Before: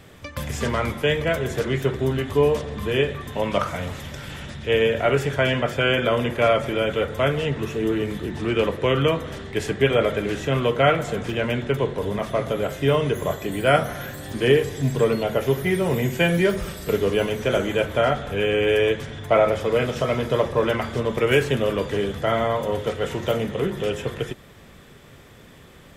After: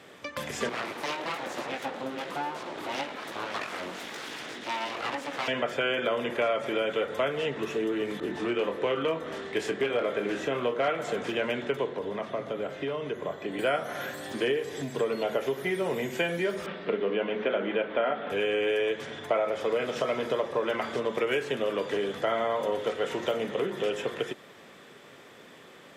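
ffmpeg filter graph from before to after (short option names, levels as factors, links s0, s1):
-filter_complex "[0:a]asettb=1/sr,asplit=3[s0][s1][s2];[s0]atrim=end=0.694[s3];[s1]atrim=start=0.69:end=5.48,asetpts=PTS-STARTPTS,afade=t=in:d=0.004:c=qsin,afade=t=out:st=4.786:d=0.004:c=qsin,flanger=delay=16:depth=5.9:speed=1.1,acompressor=mode=upward:threshold=0.0631:ratio=2.5:attack=3.2:release=140:knee=2.83:detection=peak,aeval=exprs='abs(val(0))':c=same[s4];[s2]atrim=start=5.476[s5];[s3][s4]acrossfade=d=0.004:c1=hsin:c2=qsin[s6];[s6][s5]acrossfade=d=0.004:c1=qsin:c2=hsin,asettb=1/sr,asplit=3[s7][s8][s9];[s7]atrim=end=8.204[s10];[s8]atrim=start=8.2:end=10.88,asetpts=PTS-STARTPTS,afade=t=in:d=0.004:c=qsin,afade=t=out:st=2.676:d=0.004:c=qsin,asoftclip=type=hard:threshold=0.266,asplit=2[s11][s12];[s12]adelay=25,volume=0.447[s13];[s11][s13]amix=inputs=2:normalize=0,atrim=end_sample=118188,adynamicequalizer=threshold=0.0126:dfrequency=2000:dqfactor=0.7:tfrequency=2000:tqfactor=0.7:attack=5:release=100:ratio=0.375:range=2:mode=cutabove:tftype=highshelf[s14];[s9]atrim=start=10.876[s15];[s10][s14]acrossfade=d=0.004:c1=hsin:c2=qsin[s16];[s16][s15]acrossfade=d=0.004:c1=qsin:c2=hsin,asettb=1/sr,asplit=3[s17][s18][s19];[s17]atrim=end=11.894[s20];[s18]atrim=start=11.89:end=13.59,asetpts=PTS-STARTPTS,afade=t=in:d=0.004:c=qsin,afade=t=out:st=1.696:d=0.004:c=qsin,asoftclip=type=hard:threshold=0.266,acrossover=split=270|4700[s21][s22][s23];[s21]acompressor=threshold=0.0282:ratio=4[s24];[s22]acompressor=threshold=0.0282:ratio=4[s25];[s23]acompressor=threshold=0.001:ratio=4[s26];[s24][s25][s26]amix=inputs=3:normalize=0,highshelf=f=8000:g=-9.5[s27];[s19]atrim=start=13.586[s28];[s20][s27]acrossfade=d=0.004:c1=hsin:c2=qsin[s29];[s29][s28]acrossfade=d=0.004:c1=qsin:c2=hsin,asettb=1/sr,asplit=3[s30][s31][s32];[s30]atrim=end=16.664[s33];[s31]atrim=start=16.66:end=18.3,asetpts=PTS-STARTPTS,afade=t=in:d=0.004:c=qsin,afade=t=out:st=1.636:d=0.004:c=qsin,lowpass=f=3200:w=0.5412,lowpass=f=3200:w=1.3066,lowshelf=f=150:t=q:w=3:g=-6,bandreject=f=60:t=h:w=6,bandreject=f=120:t=h:w=6,bandreject=f=180:t=h:w=6,bandreject=f=240:t=h:w=6,bandreject=f=300:t=h:w=6,bandreject=f=360:t=h:w=6,bandreject=f=420:t=h:w=6,bandreject=f=480:t=h:w=6[s34];[s32]atrim=start=18.296[s35];[s33][s34]acrossfade=d=0.004:c1=hsin:c2=qsin[s36];[s36][s35]acrossfade=d=0.004:c1=qsin:c2=hsin,acompressor=threshold=0.0708:ratio=6,highpass=290,highshelf=f=9900:g=-12"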